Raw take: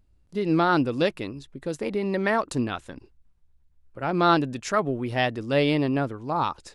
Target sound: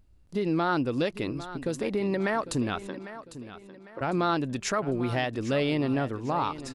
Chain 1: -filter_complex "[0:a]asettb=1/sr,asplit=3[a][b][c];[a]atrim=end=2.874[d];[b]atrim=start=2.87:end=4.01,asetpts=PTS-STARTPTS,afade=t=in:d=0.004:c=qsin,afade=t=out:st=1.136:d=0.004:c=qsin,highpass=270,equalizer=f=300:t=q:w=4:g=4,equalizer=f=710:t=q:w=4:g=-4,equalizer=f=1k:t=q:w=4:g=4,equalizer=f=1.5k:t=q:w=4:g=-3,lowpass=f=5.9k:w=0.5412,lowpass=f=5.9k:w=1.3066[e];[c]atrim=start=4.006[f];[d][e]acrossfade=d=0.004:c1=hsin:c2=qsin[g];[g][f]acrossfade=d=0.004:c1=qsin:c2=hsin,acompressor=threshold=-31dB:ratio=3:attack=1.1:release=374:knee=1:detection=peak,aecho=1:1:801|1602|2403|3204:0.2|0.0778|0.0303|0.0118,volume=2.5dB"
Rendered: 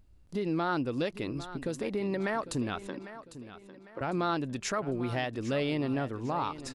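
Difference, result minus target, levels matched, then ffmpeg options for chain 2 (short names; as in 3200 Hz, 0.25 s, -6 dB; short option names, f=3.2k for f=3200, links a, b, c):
compressor: peak gain reduction +4 dB
-filter_complex "[0:a]asettb=1/sr,asplit=3[a][b][c];[a]atrim=end=2.874[d];[b]atrim=start=2.87:end=4.01,asetpts=PTS-STARTPTS,afade=t=in:d=0.004:c=qsin,afade=t=out:st=1.136:d=0.004:c=qsin,highpass=270,equalizer=f=300:t=q:w=4:g=4,equalizer=f=710:t=q:w=4:g=-4,equalizer=f=1k:t=q:w=4:g=4,equalizer=f=1.5k:t=q:w=4:g=-3,lowpass=f=5.9k:w=0.5412,lowpass=f=5.9k:w=1.3066[e];[c]atrim=start=4.006[f];[d][e]acrossfade=d=0.004:c1=hsin:c2=qsin[g];[g][f]acrossfade=d=0.004:c1=qsin:c2=hsin,acompressor=threshold=-25dB:ratio=3:attack=1.1:release=374:knee=1:detection=peak,aecho=1:1:801|1602|2403|3204:0.2|0.0778|0.0303|0.0118,volume=2.5dB"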